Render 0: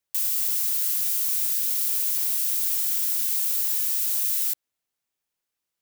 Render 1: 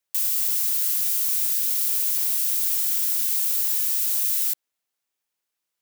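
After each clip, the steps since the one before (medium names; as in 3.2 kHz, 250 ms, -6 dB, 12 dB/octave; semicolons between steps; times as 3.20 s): bass shelf 230 Hz -8.5 dB; trim +1.5 dB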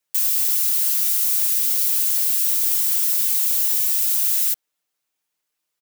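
comb 6.6 ms; trim +2 dB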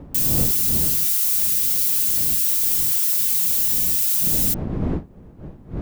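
wind noise 220 Hz -31 dBFS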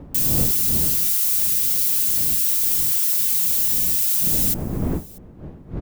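delay 639 ms -23.5 dB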